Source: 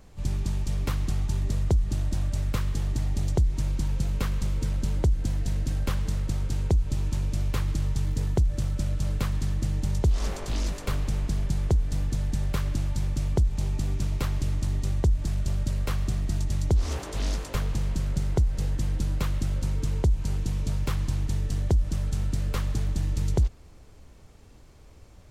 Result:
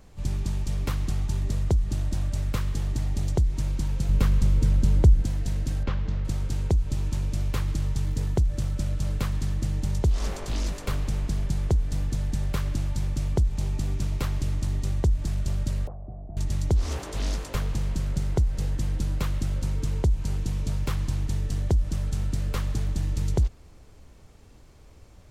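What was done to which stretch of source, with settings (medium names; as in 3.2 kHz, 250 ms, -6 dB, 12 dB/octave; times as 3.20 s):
4.09–5.22 s: bass shelf 330 Hz +7 dB
5.83–6.25 s: distance through air 190 m
15.87–16.37 s: four-pole ladder low-pass 740 Hz, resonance 75%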